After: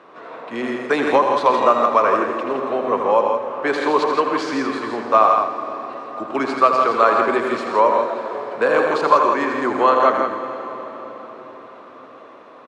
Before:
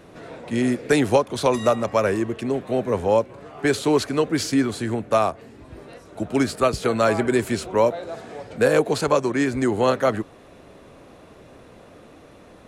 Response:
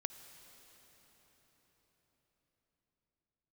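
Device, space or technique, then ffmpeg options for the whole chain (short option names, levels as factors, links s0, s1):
station announcement: -filter_complex "[0:a]highpass=340,lowpass=3700,equalizer=f=1100:t=o:w=0.57:g=12,aecho=1:1:81.63|128.3|166.2:0.398|0.355|0.501[s0];[1:a]atrim=start_sample=2205[s1];[s0][s1]afir=irnorm=-1:irlink=0,volume=1.26"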